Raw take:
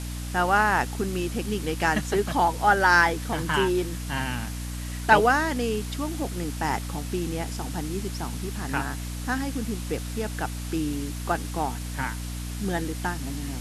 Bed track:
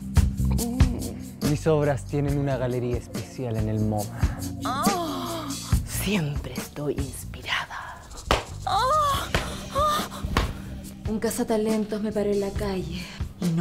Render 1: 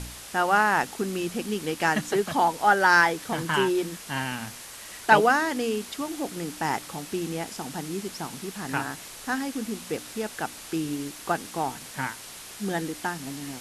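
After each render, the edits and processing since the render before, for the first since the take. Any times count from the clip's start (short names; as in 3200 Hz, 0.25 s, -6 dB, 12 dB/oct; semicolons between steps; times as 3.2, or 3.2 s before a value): de-hum 60 Hz, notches 5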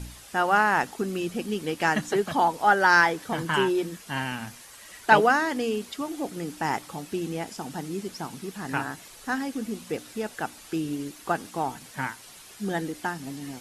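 denoiser 8 dB, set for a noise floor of -43 dBFS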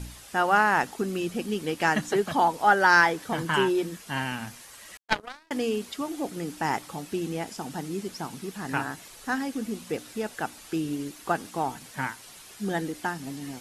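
4.97–5.51 power-law curve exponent 3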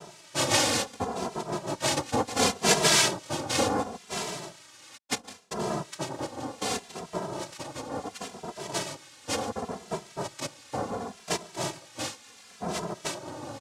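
noise vocoder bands 2; endless flanger 2.6 ms -0.7 Hz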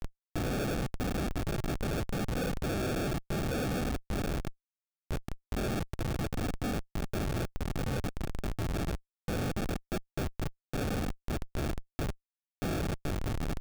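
sample-rate reducer 1000 Hz, jitter 0%; Schmitt trigger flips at -37.5 dBFS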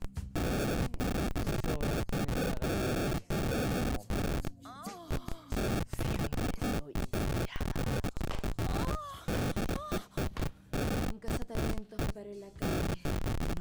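add bed track -20.5 dB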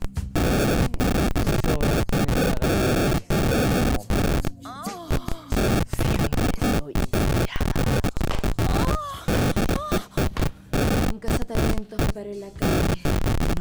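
gain +11 dB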